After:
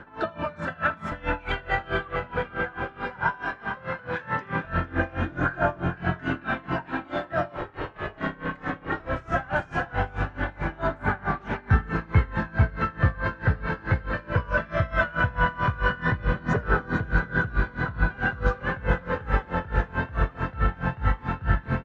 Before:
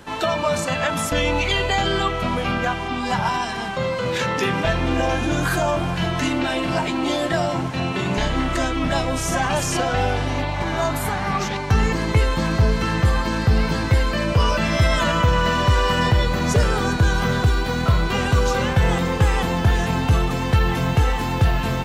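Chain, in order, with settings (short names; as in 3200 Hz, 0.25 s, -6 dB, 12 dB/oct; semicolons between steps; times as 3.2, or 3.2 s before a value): LPF 2000 Hz 12 dB/oct; bell 1500 Hz +11.5 dB 0.47 oct; phaser 0.18 Hz, delay 2.4 ms, feedback 38%; on a send: frequency-shifting echo 0.452 s, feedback 55%, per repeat +48 Hz, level -10.5 dB; 7.57–9 on the sum: ring modulator 230 Hz; tapped delay 79/671 ms -9.5/-17.5 dB; dB-linear tremolo 4.6 Hz, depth 23 dB; gain -4.5 dB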